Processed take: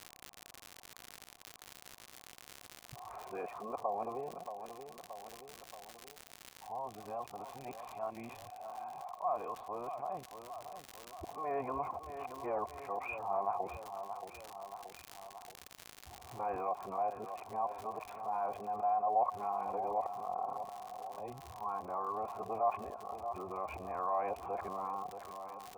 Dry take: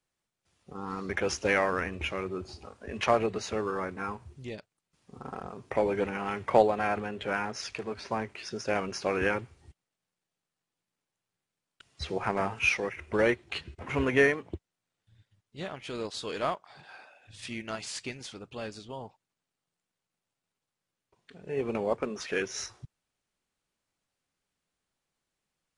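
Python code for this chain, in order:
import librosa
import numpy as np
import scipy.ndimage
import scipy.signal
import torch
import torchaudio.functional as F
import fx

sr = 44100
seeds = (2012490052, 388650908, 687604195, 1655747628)

p1 = x[::-1].copy()
p2 = fx.formant_cascade(p1, sr, vowel='a')
p3 = fx.dmg_crackle(p2, sr, seeds[0], per_s=110.0, level_db=-58.0)
p4 = p3 + fx.echo_feedback(p3, sr, ms=627, feedback_pct=41, wet_db=-17.5, dry=0)
p5 = fx.env_flatten(p4, sr, amount_pct=50)
y = F.gain(torch.from_numpy(p5), -1.5).numpy()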